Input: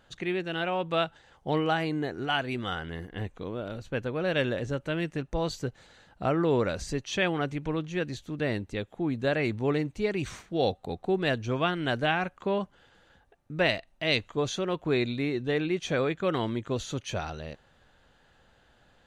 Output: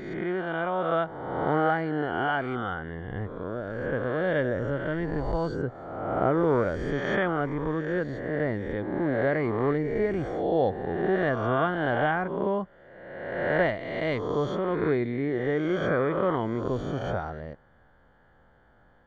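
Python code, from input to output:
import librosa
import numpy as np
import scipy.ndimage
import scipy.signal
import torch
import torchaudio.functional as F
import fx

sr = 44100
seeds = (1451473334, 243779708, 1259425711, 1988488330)

y = fx.spec_swells(x, sr, rise_s=1.43)
y = scipy.signal.savgol_filter(y, 41, 4, mode='constant')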